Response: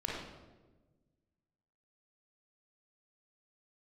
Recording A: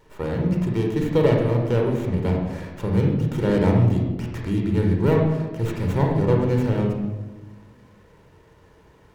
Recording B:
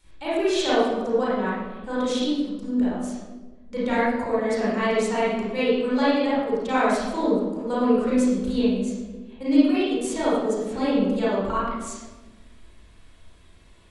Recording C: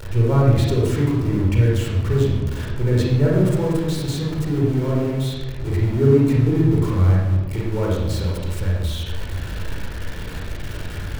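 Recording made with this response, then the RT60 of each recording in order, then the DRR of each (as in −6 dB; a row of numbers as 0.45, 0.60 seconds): C; 1.3, 1.3, 1.3 seconds; 0.5, −9.5, −3.5 decibels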